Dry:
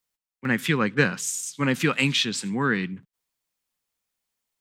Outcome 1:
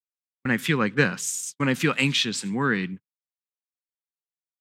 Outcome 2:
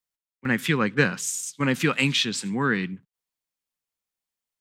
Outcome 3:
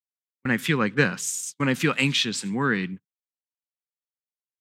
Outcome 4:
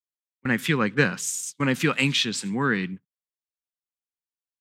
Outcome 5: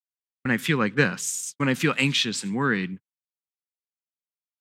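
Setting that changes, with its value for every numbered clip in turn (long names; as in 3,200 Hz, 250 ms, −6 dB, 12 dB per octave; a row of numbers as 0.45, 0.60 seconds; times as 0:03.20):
noise gate, range: −46, −7, −33, −21, −59 decibels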